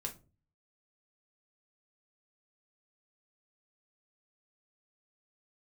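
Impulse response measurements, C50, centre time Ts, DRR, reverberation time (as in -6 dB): 14.0 dB, 11 ms, 2.0 dB, not exponential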